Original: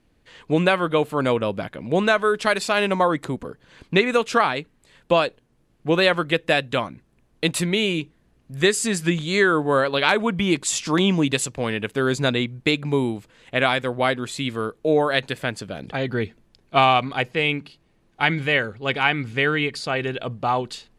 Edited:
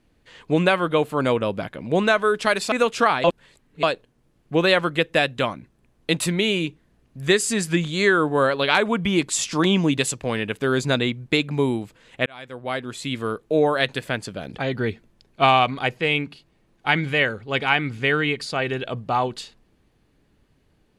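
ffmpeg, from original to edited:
-filter_complex "[0:a]asplit=5[a][b][c][d][e];[a]atrim=end=2.722[f];[b]atrim=start=4.058:end=4.582[g];[c]atrim=start=4.578:end=5.172,asetpts=PTS-STARTPTS,areverse[h];[d]atrim=start=5.168:end=13.6,asetpts=PTS-STARTPTS,afade=t=out:st=8.428:d=0.004:c=hsin[i];[e]atrim=start=13.6,asetpts=PTS-STARTPTS,afade=t=in:d=0.98[j];[f][g]acrossfade=d=0.004:c1=hsin:c2=hsin[k];[k][h]acrossfade=d=0.004:c1=hsin:c2=hsin[l];[i][j]concat=n=2:v=0:a=1[m];[l][m]acrossfade=d=0.004:c1=hsin:c2=hsin"

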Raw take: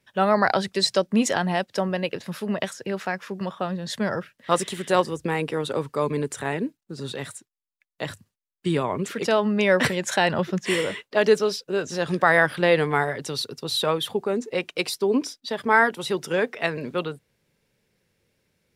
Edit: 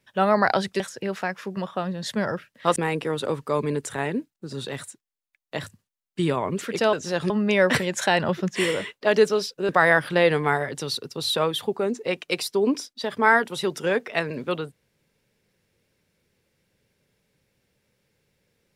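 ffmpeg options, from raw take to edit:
-filter_complex "[0:a]asplit=6[a][b][c][d][e][f];[a]atrim=end=0.802[g];[b]atrim=start=2.638:end=4.602[h];[c]atrim=start=5.228:end=9.402[i];[d]atrim=start=11.788:end=12.162[j];[e]atrim=start=9.398:end=11.792[k];[f]atrim=start=12.158[l];[g][h]acrossfade=d=0.004:c1=hsin:c2=hsin[m];[m][i]acrossfade=d=0.004:c1=hsin:c2=hsin[n];[n][j]acrossfade=d=0.004:c1=hsin:c2=hsin[o];[o][k]acrossfade=d=0.004:c1=hsin:c2=hsin[p];[p][l]acrossfade=d=0.004:c1=hsin:c2=hsin"

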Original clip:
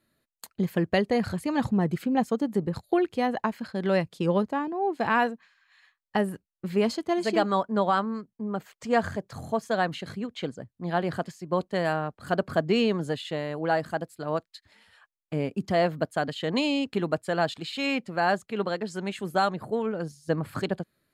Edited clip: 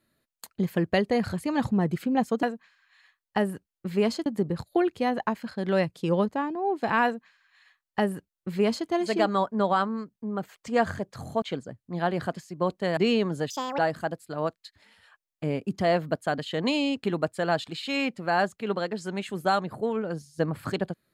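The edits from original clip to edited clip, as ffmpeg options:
-filter_complex "[0:a]asplit=7[a][b][c][d][e][f][g];[a]atrim=end=2.432[h];[b]atrim=start=5.218:end=7.052[i];[c]atrim=start=2.428:end=9.592[j];[d]atrim=start=10.328:end=11.882[k];[e]atrim=start=12.658:end=13.194[l];[f]atrim=start=13.19:end=13.68,asetpts=PTS-STARTPTS,asetrate=76293,aresample=44100[m];[g]atrim=start=13.676[n];[h][i]acrossfade=d=0.004:c1=hsin:c2=hsin[o];[o][j]acrossfade=d=0.004:c1=hsin:c2=hsin[p];[p][k]acrossfade=d=0.004:c1=hsin:c2=hsin[q];[q][l]acrossfade=d=0.004:c1=hsin:c2=hsin[r];[r][m]acrossfade=d=0.004:c1=hsin:c2=hsin[s];[s][n]acrossfade=d=0.004:c1=hsin:c2=hsin"

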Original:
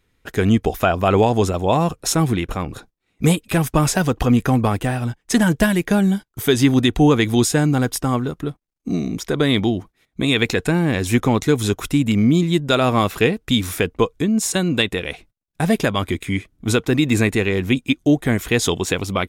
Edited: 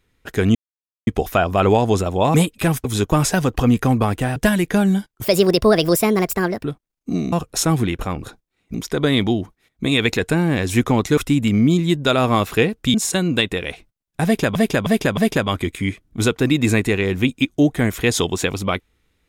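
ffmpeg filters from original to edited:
-filter_complex "[0:a]asplit=15[a][b][c][d][e][f][g][h][i][j][k][l][m][n][o];[a]atrim=end=0.55,asetpts=PTS-STARTPTS,afade=t=out:st=0.546:d=0.004:c=hsin,apad=pad_dur=0.52[p];[b]atrim=start=0.55:end=1.822,asetpts=PTS-STARTPTS,afade=t=in:d=0.004:c=hsin[q];[c]atrim=start=3.238:end=3.752[r];[d]atrim=start=11.538:end=11.812[s];[e]atrim=start=3.748:end=4.992[t];[f]atrim=start=5.528:end=6.414[u];[g]atrim=start=6.41:end=8.43,asetpts=PTS-STARTPTS,asetrate=63504,aresample=44100,atrim=end_sample=61862,asetpts=PTS-STARTPTS[v];[h]atrim=start=8.426:end=9.112[w];[i]atrim=start=1.818:end=3.242[x];[j]atrim=start=9.108:end=11.542[y];[k]atrim=start=11.808:end=13.582[z];[l]atrim=start=14.348:end=15.962[aa];[m]atrim=start=15.648:end=15.962[ab];[n]atrim=start=15.648:end=15.962[ac];[o]atrim=start=15.648[ad];[p][q]concat=n=2:v=0:a=1[ae];[ae][r]acrossfade=d=0.004:c1=hsin:c2=hsin[af];[af][s]acrossfade=d=0.004:c1=hsin:c2=hsin[ag];[ag][t]acrossfade=d=0.004:c1=hsin:c2=hsin[ah];[ah][u]acrossfade=d=0.004:c1=hsin:c2=hsin[ai];[ai][v]acrossfade=d=0.004:c1=hsin:c2=hsin[aj];[aj][w]acrossfade=d=0.004:c1=hsin:c2=hsin[ak];[ak][x]acrossfade=d=0.004:c1=hsin:c2=hsin[al];[al][y]acrossfade=d=0.004:c1=hsin:c2=hsin[am];[am][z]acrossfade=d=0.004:c1=hsin:c2=hsin[an];[an][aa]acrossfade=d=0.004:c1=hsin:c2=hsin[ao];[ao][ab]acrossfade=d=0.004:c1=hsin:c2=hsin[ap];[ap][ac]acrossfade=d=0.004:c1=hsin:c2=hsin[aq];[aq][ad]acrossfade=d=0.004:c1=hsin:c2=hsin"

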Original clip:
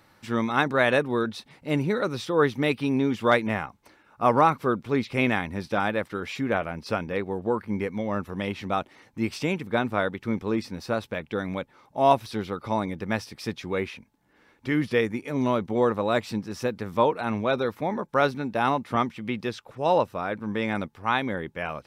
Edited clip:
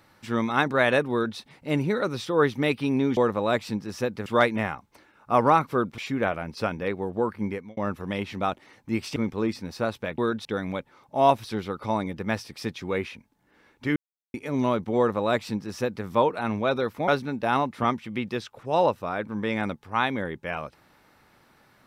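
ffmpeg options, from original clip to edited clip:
-filter_complex "[0:a]asplit=11[a][b][c][d][e][f][g][h][i][j][k];[a]atrim=end=3.172[l];[b]atrim=start=15.788:end=16.882[m];[c]atrim=start=3.168:end=4.892[n];[d]atrim=start=6.268:end=8.06,asetpts=PTS-STARTPTS,afade=t=out:st=1.462:d=0.33[o];[e]atrim=start=8.06:end=9.452,asetpts=PTS-STARTPTS,afade=t=in:d=0.004:c=hsin[p];[f]atrim=start=10.248:end=11.272[q];[g]atrim=start=1.108:end=1.382[r];[h]atrim=start=11.268:end=14.78,asetpts=PTS-STARTPTS,afade=t=out:st=3.508:d=0.004:c=hsin[s];[i]atrim=start=14.78:end=15.16,asetpts=PTS-STARTPTS,volume=0[t];[j]atrim=start=15.16:end=17.902,asetpts=PTS-STARTPTS,afade=t=in:d=0.004:c=hsin[u];[k]atrim=start=18.198[v];[l][m]acrossfade=d=0.004:c1=hsin:c2=hsin[w];[w][n]acrossfade=d=0.004:c1=hsin:c2=hsin[x];[o][p]concat=n=2:v=0:a=1[y];[x][y]acrossfade=d=0.004:c1=hsin:c2=hsin[z];[z][q]acrossfade=d=0.004:c1=hsin:c2=hsin[aa];[aa][r]acrossfade=d=0.004:c1=hsin:c2=hsin[ab];[s][t][u]concat=n=3:v=0:a=1[ac];[ab][ac]acrossfade=d=0.004:c1=hsin:c2=hsin[ad];[ad][v]acrossfade=d=0.004:c1=hsin:c2=hsin"

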